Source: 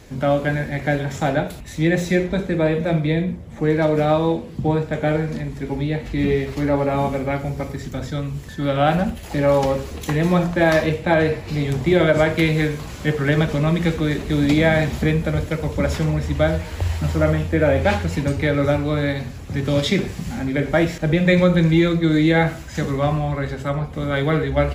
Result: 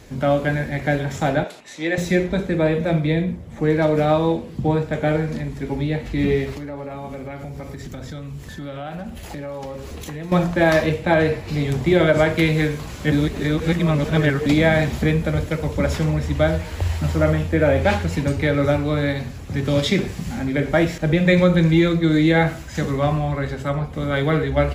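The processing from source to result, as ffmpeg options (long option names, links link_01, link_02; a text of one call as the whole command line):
ffmpeg -i in.wav -filter_complex "[0:a]asettb=1/sr,asplit=3[link_01][link_02][link_03];[link_01]atrim=end=1.444[link_04];[link_02]atrim=start=1.44:end=1.98,asetpts=PTS-STARTPTS,afade=type=in:duration=0.004:curve=qsin,afade=type=out:start_time=0.536:duration=0.004:curve=qsin,highpass=410,lowpass=7700[link_05];[link_03]atrim=start=1.976[link_06];[link_04][link_05]acrossfade=duration=0.004:curve1=hsin:curve2=qsin[link_07];[link_07][link_06]acrossfade=duration=0.004:curve1=qsin:curve2=hsin,asettb=1/sr,asplit=3[link_08][link_09][link_10];[link_08]atrim=end=6.564[link_11];[link_09]atrim=start=6.56:end=10.32,asetpts=PTS-STARTPTS,afade=type=in:duration=0.004:curve=qsin,afade=type=out:start_time=3.756:duration=0.004:curve=qsin,acompressor=threshold=-29dB:ratio=5:attack=3.2:release=140:knee=1:detection=peak[link_12];[link_10]atrim=start=10.316[link_13];[link_11][link_12]acrossfade=duration=0.004:curve1=hsin:curve2=qsin[link_14];[link_14][link_13]acrossfade=duration=0.004:curve1=qsin:curve2=hsin,asplit=3[link_15][link_16][link_17];[link_15]atrim=end=13.122[link_18];[link_16]atrim=start=13.118:end=14.462,asetpts=PTS-STARTPTS,areverse[link_19];[link_17]atrim=start=14.458[link_20];[link_18][link_19]acrossfade=duration=0.004:curve1=hsin:curve2=hsin[link_21];[link_21][link_20]acrossfade=duration=0.004:curve1=hsin:curve2=hsin" out.wav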